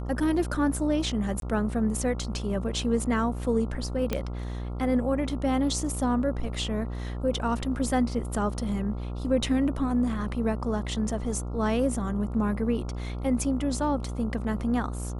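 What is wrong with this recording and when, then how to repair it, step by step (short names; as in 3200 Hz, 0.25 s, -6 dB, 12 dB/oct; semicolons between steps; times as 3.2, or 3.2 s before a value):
buzz 60 Hz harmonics 23 -33 dBFS
1.4–1.42 gap 22 ms
4.13 pop -13 dBFS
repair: de-click; de-hum 60 Hz, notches 23; interpolate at 1.4, 22 ms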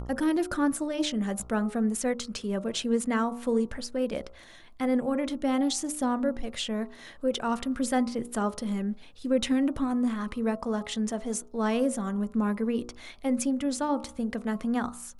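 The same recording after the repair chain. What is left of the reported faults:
none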